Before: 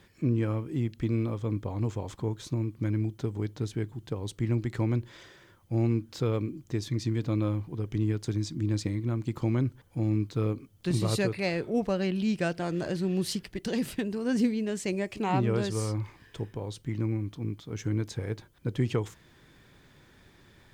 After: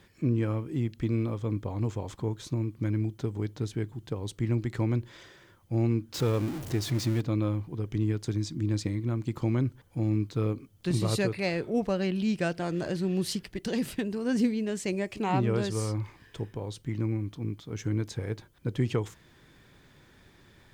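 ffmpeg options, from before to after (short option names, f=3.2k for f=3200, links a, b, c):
-filter_complex "[0:a]asettb=1/sr,asplit=3[a][b][c];[a]atrim=end=6.144[d];[b]atrim=start=6.14:end=7.21,asetpts=PTS-STARTPTS,afade=t=in:d=0.004:c=qsin,afade=t=out:st=1.066:d=0.004:c=qsin,aeval=exprs='val(0)+0.5*0.02*sgn(val(0))':c=same[e];[c]atrim=start=7.206[f];[d][e]acrossfade=d=0.004:c1=hsin:c2=qsin[g];[g][f]acrossfade=d=0.004:c1=qsin:c2=hsin"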